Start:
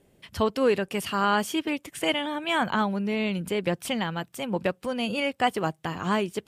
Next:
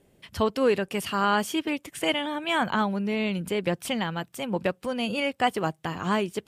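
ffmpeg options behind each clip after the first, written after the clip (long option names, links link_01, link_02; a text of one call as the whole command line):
ffmpeg -i in.wav -af anull out.wav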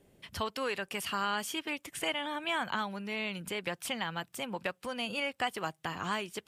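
ffmpeg -i in.wav -filter_complex "[0:a]acrossover=split=780|1800[link_01][link_02][link_03];[link_01]acompressor=threshold=-39dB:ratio=4[link_04];[link_02]acompressor=threshold=-32dB:ratio=4[link_05];[link_03]acompressor=threshold=-33dB:ratio=4[link_06];[link_04][link_05][link_06]amix=inputs=3:normalize=0,volume=-2dB" out.wav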